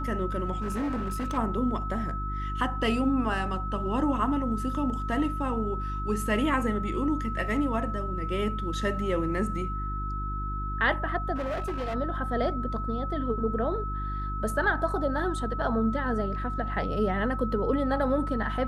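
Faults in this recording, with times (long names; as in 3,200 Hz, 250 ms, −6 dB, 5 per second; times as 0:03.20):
mains hum 50 Hz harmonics 7 −33 dBFS
whistle 1,300 Hz −34 dBFS
0:00.61–0:01.38: clipping −26.5 dBFS
0:11.35–0:11.95: clipping −27.5 dBFS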